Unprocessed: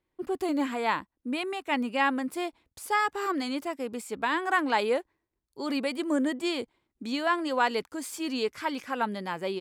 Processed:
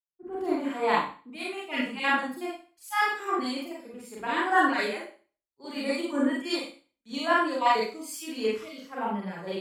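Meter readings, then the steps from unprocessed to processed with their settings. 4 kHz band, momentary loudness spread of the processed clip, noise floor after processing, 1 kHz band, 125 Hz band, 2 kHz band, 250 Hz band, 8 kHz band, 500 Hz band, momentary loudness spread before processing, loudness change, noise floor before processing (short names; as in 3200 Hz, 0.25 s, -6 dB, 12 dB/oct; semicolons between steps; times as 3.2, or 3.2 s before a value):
+0.5 dB, 15 LU, under -85 dBFS, +1.5 dB, n/a, +2.0 dB, -1.0 dB, -1.0 dB, 0.0 dB, 9 LU, +1.0 dB, -82 dBFS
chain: random spectral dropouts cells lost 25%; Schroeder reverb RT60 0.51 s, combs from 32 ms, DRR -4.5 dB; three-band expander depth 100%; gain -4 dB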